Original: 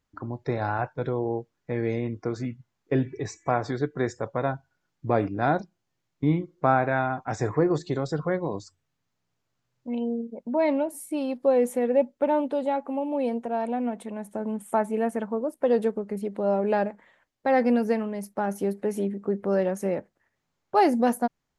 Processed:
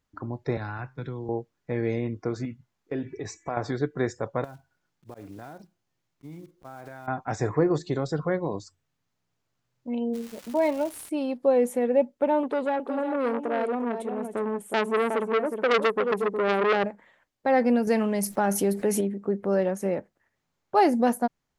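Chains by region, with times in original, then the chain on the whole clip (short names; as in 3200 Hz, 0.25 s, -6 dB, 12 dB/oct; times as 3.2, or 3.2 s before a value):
0.57–1.29 bell 620 Hz -13.5 dB 1.3 oct + resonator 130 Hz, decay 0.42 s, mix 30% + three-band squash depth 70%
2.45–3.57 bell 130 Hz -8.5 dB 0.21 oct + compressor 2:1, threshold -31 dBFS
4.44–7.08 block floating point 5-bit + auto swell 0.276 s + compressor 16:1, threshold -37 dBFS
10.13–11.08 notch comb 260 Hz + crackle 580/s -35 dBFS
12.43–16.84 bell 420 Hz +10 dB 0.36 oct + echo 0.364 s -7.5 dB + core saturation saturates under 2000 Hz
17.87–19.01 high shelf 2600 Hz +7.5 dB + fast leveller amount 50%
whole clip: dry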